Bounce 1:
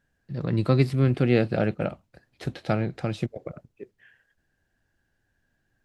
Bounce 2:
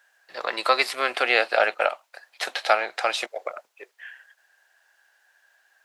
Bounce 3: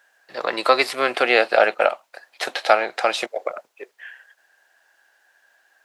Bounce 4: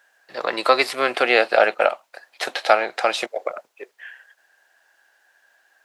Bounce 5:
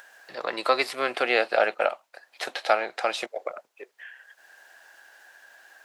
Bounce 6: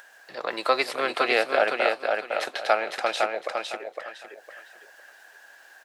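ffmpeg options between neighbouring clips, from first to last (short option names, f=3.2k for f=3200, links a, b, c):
-filter_complex "[0:a]highpass=f=710:w=0.5412,highpass=f=710:w=1.3066,asplit=2[a][b];[b]alimiter=limit=-22.5dB:level=0:latency=1:release=301,volume=1.5dB[c];[a][c]amix=inputs=2:normalize=0,volume=8dB"
-af "lowshelf=f=430:g=12,volume=1.5dB"
-af anull
-af "acompressor=mode=upward:threshold=-33dB:ratio=2.5,volume=-6dB"
-af "aecho=1:1:508|1016|1524|2032:0.631|0.164|0.0427|0.0111"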